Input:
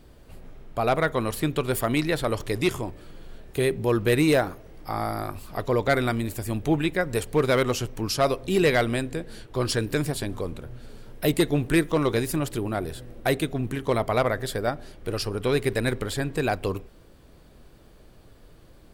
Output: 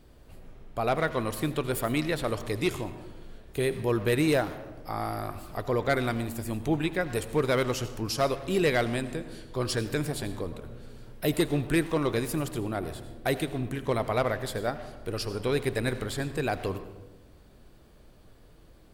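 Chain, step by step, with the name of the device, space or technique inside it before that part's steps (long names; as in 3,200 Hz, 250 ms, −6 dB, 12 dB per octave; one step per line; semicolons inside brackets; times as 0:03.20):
saturated reverb return (on a send at −8 dB: convolution reverb RT60 0.90 s, pre-delay 74 ms + soft clipping −26 dBFS, distortion −8 dB)
on the sum: level −4 dB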